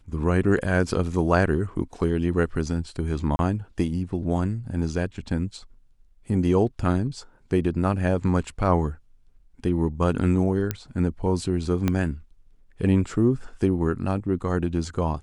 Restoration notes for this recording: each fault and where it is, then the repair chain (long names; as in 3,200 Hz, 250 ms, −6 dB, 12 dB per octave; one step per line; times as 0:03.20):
0:03.36–0:03.39: drop-out 31 ms
0:10.71: click −11 dBFS
0:11.88: click −10 dBFS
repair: click removal
repair the gap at 0:03.36, 31 ms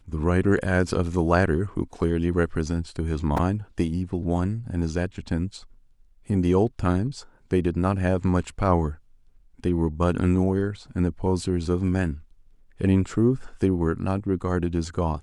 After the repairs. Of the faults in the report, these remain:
0:11.88: click